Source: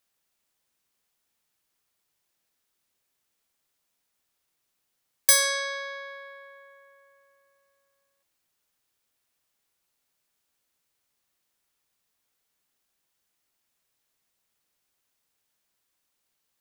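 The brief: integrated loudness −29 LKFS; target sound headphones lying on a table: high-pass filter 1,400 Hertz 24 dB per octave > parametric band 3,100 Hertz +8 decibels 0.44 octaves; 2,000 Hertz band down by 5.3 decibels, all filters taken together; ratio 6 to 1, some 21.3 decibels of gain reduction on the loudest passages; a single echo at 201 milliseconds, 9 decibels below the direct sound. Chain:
parametric band 2,000 Hz −6.5 dB
downward compressor 6 to 1, threshold −38 dBFS
high-pass filter 1,400 Hz 24 dB per octave
parametric band 3,100 Hz +8 dB 0.44 octaves
single-tap delay 201 ms −9 dB
level +13 dB

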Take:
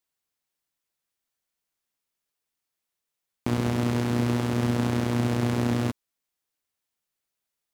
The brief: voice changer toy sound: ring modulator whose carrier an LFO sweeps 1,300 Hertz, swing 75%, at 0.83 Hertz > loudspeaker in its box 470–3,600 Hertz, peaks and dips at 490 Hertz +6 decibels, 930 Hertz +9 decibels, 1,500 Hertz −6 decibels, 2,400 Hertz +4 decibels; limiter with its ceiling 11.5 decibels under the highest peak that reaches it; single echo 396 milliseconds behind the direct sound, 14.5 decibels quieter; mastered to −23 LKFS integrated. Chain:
brickwall limiter −22.5 dBFS
single-tap delay 396 ms −14.5 dB
ring modulator whose carrier an LFO sweeps 1,300 Hz, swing 75%, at 0.83 Hz
loudspeaker in its box 470–3,600 Hz, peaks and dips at 490 Hz +6 dB, 930 Hz +9 dB, 1,500 Hz −6 dB, 2,400 Hz +4 dB
level +10.5 dB

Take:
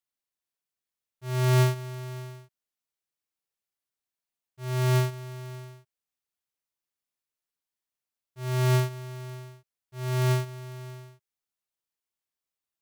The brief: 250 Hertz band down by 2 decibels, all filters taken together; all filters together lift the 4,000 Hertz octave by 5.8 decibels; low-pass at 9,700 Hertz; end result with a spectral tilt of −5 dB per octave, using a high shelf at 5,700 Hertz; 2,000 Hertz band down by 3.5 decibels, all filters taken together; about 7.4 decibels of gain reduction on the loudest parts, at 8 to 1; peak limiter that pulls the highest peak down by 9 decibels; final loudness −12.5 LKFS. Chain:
low-pass filter 9,700 Hz
parametric band 250 Hz −7.5 dB
parametric band 2,000 Hz −7 dB
parametric band 4,000 Hz +8 dB
high-shelf EQ 5,700 Hz +4 dB
downward compressor 8 to 1, threshold −28 dBFS
level +28 dB
brickwall limiter −3 dBFS

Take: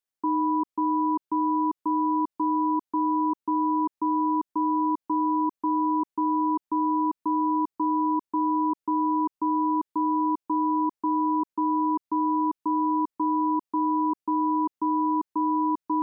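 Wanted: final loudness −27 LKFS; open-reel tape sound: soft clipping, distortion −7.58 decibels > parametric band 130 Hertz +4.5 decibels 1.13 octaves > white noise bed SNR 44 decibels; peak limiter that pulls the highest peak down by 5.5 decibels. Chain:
brickwall limiter −23.5 dBFS
soft clipping −37.5 dBFS
parametric band 130 Hz +4.5 dB 1.13 octaves
white noise bed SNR 44 dB
level +13 dB

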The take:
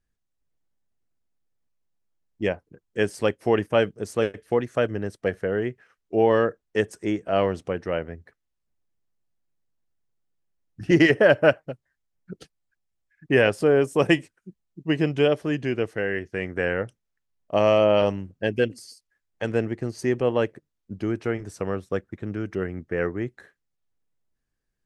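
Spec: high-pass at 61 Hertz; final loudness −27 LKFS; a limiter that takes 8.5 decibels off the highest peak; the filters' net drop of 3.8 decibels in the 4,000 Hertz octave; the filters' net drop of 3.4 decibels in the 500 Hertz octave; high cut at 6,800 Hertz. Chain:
high-pass filter 61 Hz
low-pass filter 6,800 Hz
parametric band 500 Hz −4 dB
parametric band 4,000 Hz −6 dB
level +2 dB
brickwall limiter −12 dBFS

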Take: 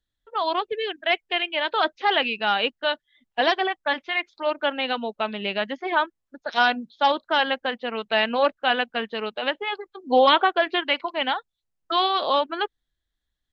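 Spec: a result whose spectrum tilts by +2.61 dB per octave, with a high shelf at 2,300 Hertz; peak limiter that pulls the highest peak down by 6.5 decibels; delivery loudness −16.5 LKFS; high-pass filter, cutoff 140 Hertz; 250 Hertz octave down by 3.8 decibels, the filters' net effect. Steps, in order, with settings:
high-pass filter 140 Hz
parametric band 250 Hz −4.5 dB
high-shelf EQ 2,300 Hz +5 dB
level +7.5 dB
brickwall limiter −3 dBFS

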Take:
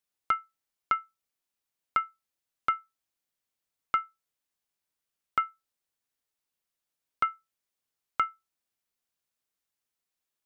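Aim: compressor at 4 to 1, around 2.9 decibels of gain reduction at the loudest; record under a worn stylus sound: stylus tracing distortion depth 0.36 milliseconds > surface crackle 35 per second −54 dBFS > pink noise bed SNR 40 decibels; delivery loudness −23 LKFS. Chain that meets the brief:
downward compressor 4 to 1, threshold −24 dBFS
stylus tracing distortion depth 0.36 ms
surface crackle 35 per second −54 dBFS
pink noise bed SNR 40 dB
level +11.5 dB

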